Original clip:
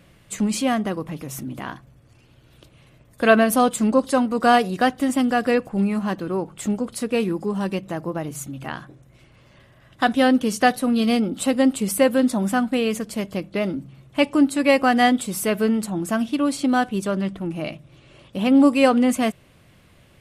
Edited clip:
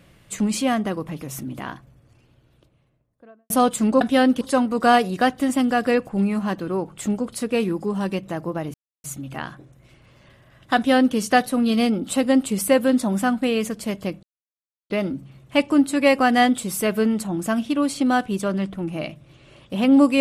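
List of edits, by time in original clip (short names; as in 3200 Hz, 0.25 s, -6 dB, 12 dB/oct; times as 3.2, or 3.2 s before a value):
1.57–3.5 studio fade out
8.34 insert silence 0.30 s
10.06–10.46 copy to 4.01
13.53 insert silence 0.67 s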